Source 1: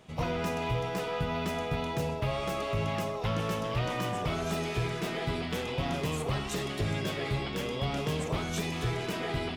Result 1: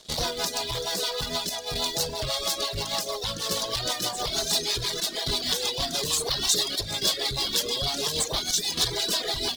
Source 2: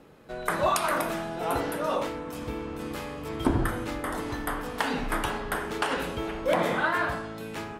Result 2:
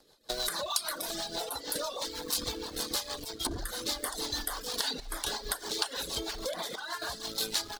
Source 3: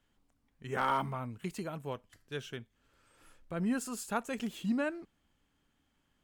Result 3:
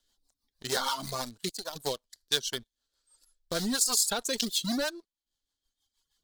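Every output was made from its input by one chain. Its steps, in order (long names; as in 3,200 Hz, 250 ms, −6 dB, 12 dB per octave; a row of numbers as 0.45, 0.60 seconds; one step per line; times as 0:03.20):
notch filter 1,300 Hz, Q 12
in parallel at −3.5 dB: centre clipping without the shift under −36 dBFS
on the sum: square-wave tremolo 0.57 Hz, depth 65%, duty 85%
leveller curve on the samples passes 2
parametric band 140 Hz −14.5 dB 2.9 octaves
rotating-speaker cabinet horn 6.3 Hz
downward compressor 16 to 1, threshold −32 dBFS
reverb reduction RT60 1.3 s
high shelf with overshoot 3,200 Hz +8.5 dB, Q 3
normalise the peak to −9 dBFS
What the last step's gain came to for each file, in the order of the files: +7.0, +0.5, +6.0 decibels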